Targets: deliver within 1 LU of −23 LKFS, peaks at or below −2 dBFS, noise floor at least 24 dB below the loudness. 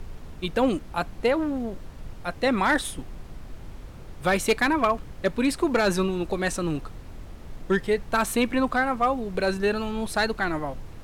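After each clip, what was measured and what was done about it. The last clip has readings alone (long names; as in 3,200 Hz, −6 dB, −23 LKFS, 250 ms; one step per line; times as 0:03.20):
share of clipped samples 0.3%; peaks flattened at −14.0 dBFS; background noise floor −42 dBFS; target noise floor −50 dBFS; integrated loudness −25.5 LKFS; sample peak −14.0 dBFS; target loudness −23.0 LKFS
→ clipped peaks rebuilt −14 dBFS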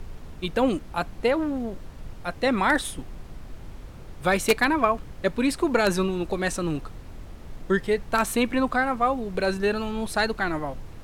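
share of clipped samples 0.0%; background noise floor −42 dBFS; target noise floor −49 dBFS
→ noise reduction from a noise print 7 dB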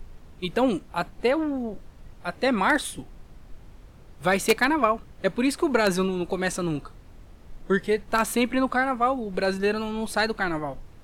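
background noise floor −49 dBFS; integrated loudness −25.0 LKFS; sample peak −5.0 dBFS; target loudness −23.0 LKFS
→ level +2 dB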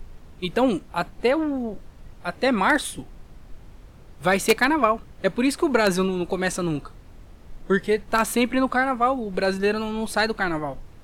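integrated loudness −23.0 LKFS; sample peak −3.0 dBFS; background noise floor −47 dBFS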